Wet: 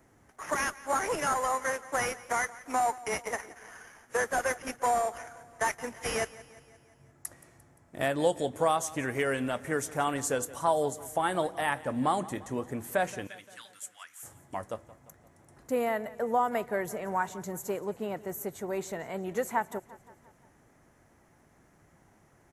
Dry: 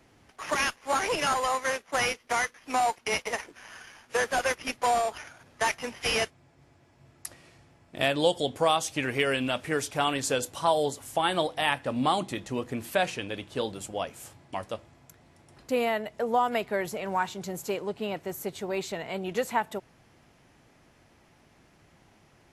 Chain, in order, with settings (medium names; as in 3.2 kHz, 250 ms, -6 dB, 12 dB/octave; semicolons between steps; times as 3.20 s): treble shelf 11 kHz +5 dB; 13.27–14.23 s: inverse Chebyshev high-pass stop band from 320 Hz, stop band 70 dB; high-order bell 3.5 kHz -10 dB 1.3 oct; feedback delay 174 ms, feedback 56%, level -19 dB; trim -2 dB